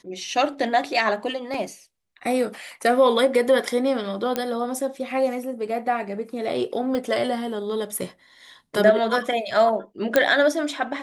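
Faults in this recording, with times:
0:01.54: drop-out 3.2 ms
0:04.36: click −9 dBFS
0:06.95: click −15 dBFS
0:10.16: click −4 dBFS

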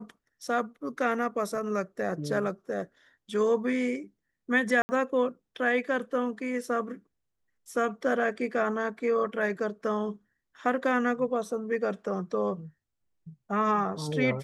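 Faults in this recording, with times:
0:04.82–0:04.89: drop-out 70 ms

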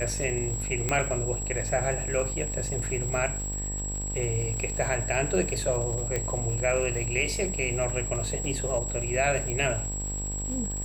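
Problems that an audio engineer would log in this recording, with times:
mains buzz 50 Hz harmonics 20 −34 dBFS
surface crackle 260 per second −36 dBFS
whistle 7,700 Hz −33 dBFS
0:00.89: click −11 dBFS
0:06.16: click −15 dBFS
0:09.50: click −17 dBFS

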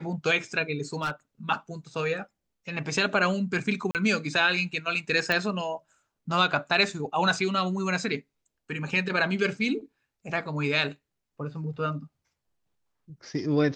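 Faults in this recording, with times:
0:01.01–0:01.11: clipping −24 dBFS
0:03.91–0:03.95: drop-out 38 ms
0:05.32: click −13 dBFS

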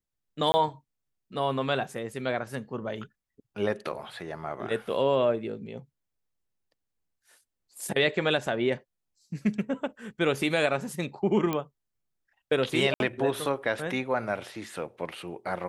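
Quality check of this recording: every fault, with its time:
0:00.52–0:00.54: drop-out 20 ms
0:11.53: click −15 dBFS
0:12.94–0:13.00: drop-out 61 ms

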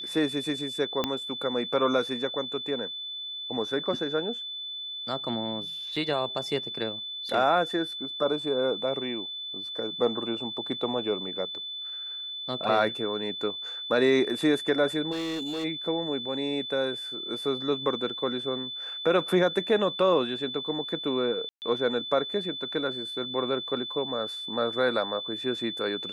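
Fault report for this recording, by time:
whistle 3,500 Hz −34 dBFS
0:01.04: click −12 dBFS
0:05.96: drop-out 4.1 ms
0:15.11–0:15.65: clipping −28.5 dBFS
0:21.49–0:21.62: drop-out 129 ms

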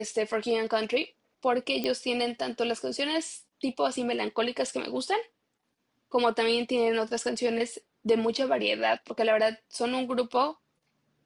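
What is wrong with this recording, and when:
0:01.84: click −16 dBFS

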